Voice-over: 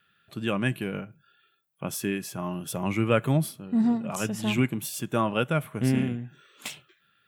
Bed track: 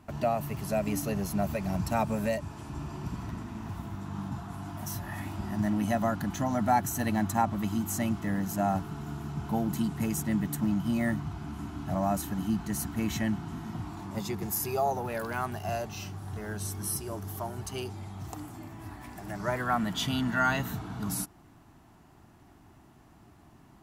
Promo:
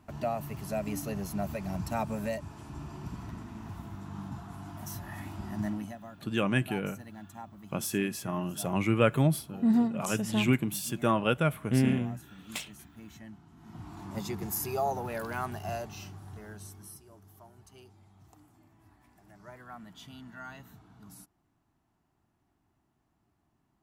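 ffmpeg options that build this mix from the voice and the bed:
ffmpeg -i stem1.wav -i stem2.wav -filter_complex "[0:a]adelay=5900,volume=-1dB[link_01];[1:a]volume=12.5dB,afade=type=out:start_time=5.66:duration=0.3:silence=0.188365,afade=type=in:start_time=13.56:duration=0.56:silence=0.149624,afade=type=out:start_time=15.52:duration=1.49:silence=0.149624[link_02];[link_01][link_02]amix=inputs=2:normalize=0" out.wav

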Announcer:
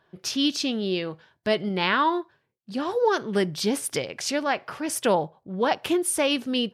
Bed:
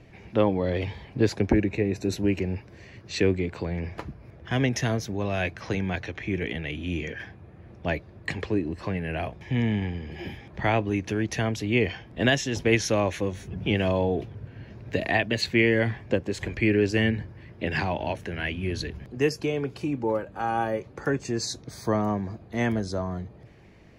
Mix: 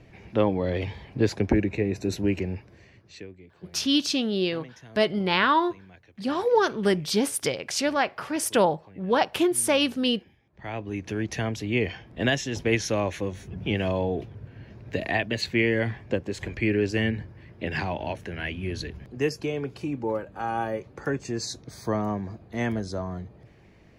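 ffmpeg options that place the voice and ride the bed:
ffmpeg -i stem1.wav -i stem2.wav -filter_complex "[0:a]adelay=3500,volume=1dB[link_01];[1:a]volume=19.5dB,afade=type=out:start_time=2.36:duration=0.91:silence=0.0841395,afade=type=in:start_time=10.52:duration=0.68:silence=0.1[link_02];[link_01][link_02]amix=inputs=2:normalize=0" out.wav

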